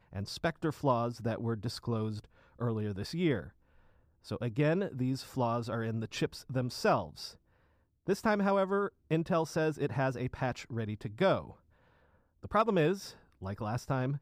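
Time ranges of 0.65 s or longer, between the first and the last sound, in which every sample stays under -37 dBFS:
3.44–4.31
7.28–8.08
11.42–12.44

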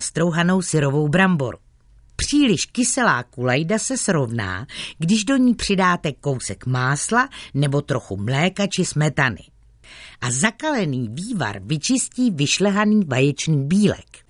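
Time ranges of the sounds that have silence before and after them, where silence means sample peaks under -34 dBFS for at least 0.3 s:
2.19–9.41

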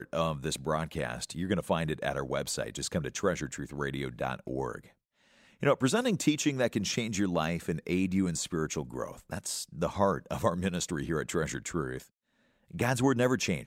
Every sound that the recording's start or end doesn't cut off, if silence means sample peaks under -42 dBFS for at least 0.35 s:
5.62–12.03

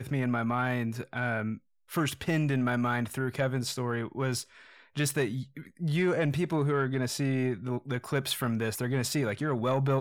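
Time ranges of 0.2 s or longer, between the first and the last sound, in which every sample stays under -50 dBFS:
1.58–1.89

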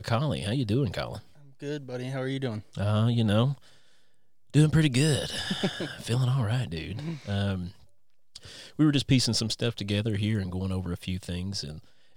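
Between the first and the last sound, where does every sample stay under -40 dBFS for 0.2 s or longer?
1.2–1.62
3.54–4.54
7.71–8.36

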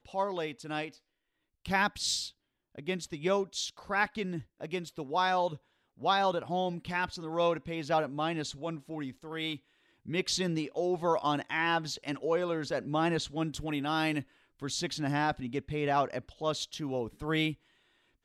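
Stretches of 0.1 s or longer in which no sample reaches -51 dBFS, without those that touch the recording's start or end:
0.97–1.66
2.31–2.75
4.43–4.6
5.57–5.98
9.58–10.06
14.23–14.6

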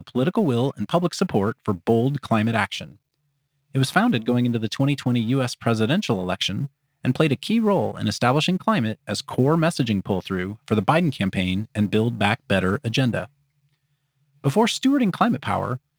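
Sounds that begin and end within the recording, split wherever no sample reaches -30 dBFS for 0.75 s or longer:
3.75–13.24

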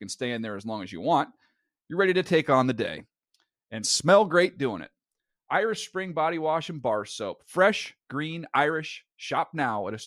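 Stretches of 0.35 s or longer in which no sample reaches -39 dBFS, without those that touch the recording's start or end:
1.26–1.9
3–3.72
4.86–5.5

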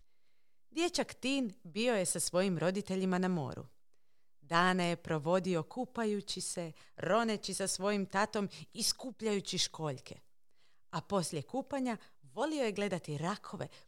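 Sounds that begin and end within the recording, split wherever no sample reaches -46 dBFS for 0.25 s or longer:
0.76–3.65
4.51–10.16
10.93–11.96

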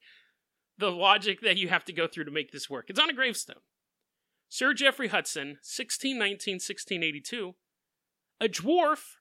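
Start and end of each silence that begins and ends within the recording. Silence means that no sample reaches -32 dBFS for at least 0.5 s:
3.52–4.54
7.45–8.41

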